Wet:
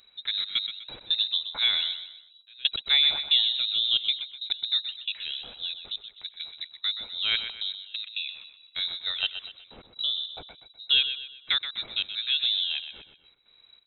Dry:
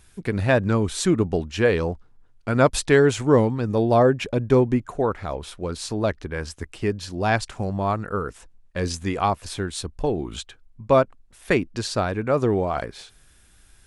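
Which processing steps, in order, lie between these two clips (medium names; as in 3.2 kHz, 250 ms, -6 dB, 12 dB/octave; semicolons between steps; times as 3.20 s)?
trance gate "xxxx.x..x.xxx.xx" 136 bpm -24 dB; feedback delay 125 ms, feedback 39%, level -10 dB; careless resampling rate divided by 6×, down filtered, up zero stuff; frequency inversion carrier 3.9 kHz; trim -6 dB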